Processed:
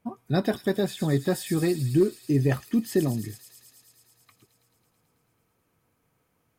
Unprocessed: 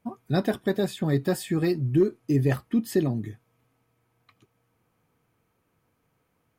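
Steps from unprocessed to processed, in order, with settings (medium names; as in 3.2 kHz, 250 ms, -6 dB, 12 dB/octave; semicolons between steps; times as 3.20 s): feedback echo behind a high-pass 109 ms, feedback 80%, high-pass 5 kHz, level -3 dB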